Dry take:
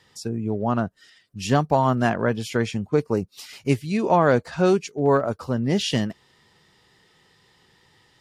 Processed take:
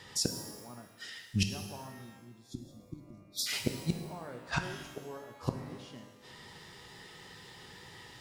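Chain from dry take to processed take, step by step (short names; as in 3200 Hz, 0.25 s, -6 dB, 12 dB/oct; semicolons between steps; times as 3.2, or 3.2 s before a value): flipped gate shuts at -22 dBFS, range -35 dB; spectral delete 1.89–3.47, 380–3300 Hz; shimmer reverb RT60 1.2 s, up +12 st, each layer -8 dB, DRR 5 dB; gain +6.5 dB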